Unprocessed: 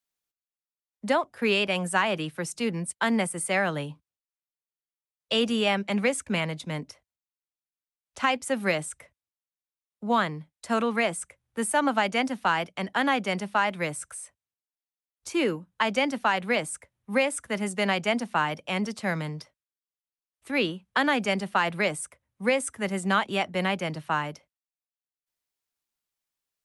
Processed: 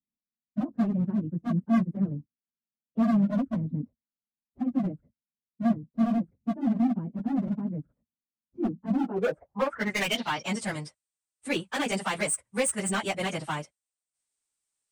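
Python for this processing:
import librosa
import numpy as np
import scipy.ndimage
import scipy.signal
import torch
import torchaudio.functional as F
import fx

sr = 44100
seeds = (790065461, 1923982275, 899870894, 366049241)

y = fx.filter_sweep_lowpass(x, sr, from_hz=230.0, to_hz=8500.0, start_s=15.96, end_s=18.87, q=5.9)
y = np.clip(10.0 ** (20.0 / 20.0) * y, -1.0, 1.0) / 10.0 ** (20.0 / 20.0)
y = fx.stretch_vocoder_free(y, sr, factor=0.56)
y = y * librosa.db_to_amplitude(1.5)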